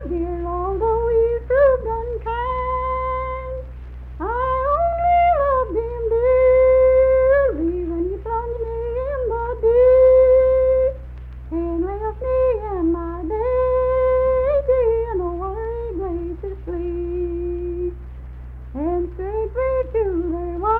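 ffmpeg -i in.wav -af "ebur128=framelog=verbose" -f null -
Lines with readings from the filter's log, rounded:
Integrated loudness:
  I:         -19.5 LUFS
  Threshold: -29.8 LUFS
Loudness range:
  LRA:         9.0 LU
  Threshold: -39.6 LUFS
  LRA low:   -25.8 LUFS
  LRA high:  -16.8 LUFS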